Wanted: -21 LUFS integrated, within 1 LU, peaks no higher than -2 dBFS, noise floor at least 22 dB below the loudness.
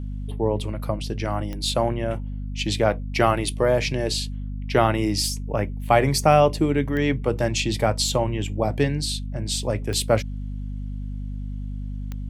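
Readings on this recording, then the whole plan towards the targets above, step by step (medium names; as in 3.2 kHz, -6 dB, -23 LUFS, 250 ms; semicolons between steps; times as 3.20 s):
clicks found 4; hum 50 Hz; highest harmonic 250 Hz; hum level -27 dBFS; loudness -24.0 LUFS; peak level -3.5 dBFS; loudness target -21.0 LUFS
-> de-click; de-hum 50 Hz, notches 5; trim +3 dB; peak limiter -2 dBFS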